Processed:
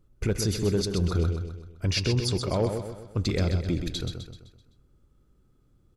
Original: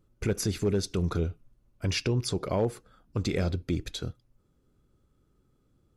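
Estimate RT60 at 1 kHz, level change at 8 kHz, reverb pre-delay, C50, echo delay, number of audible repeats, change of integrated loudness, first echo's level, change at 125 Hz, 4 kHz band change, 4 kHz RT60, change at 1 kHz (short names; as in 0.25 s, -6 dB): none, +2.0 dB, none, none, 0.128 s, 5, +2.5 dB, -6.5 dB, +4.0 dB, +4.5 dB, none, +1.0 dB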